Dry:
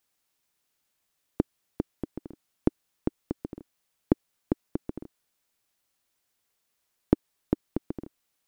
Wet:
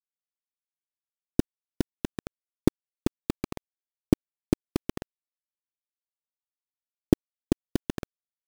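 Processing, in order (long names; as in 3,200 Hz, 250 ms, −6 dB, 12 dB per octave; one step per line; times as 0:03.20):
pitch vibrato 0.46 Hz 55 cents
tilt shelving filter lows +9.5 dB
bit reduction 4 bits
level −5 dB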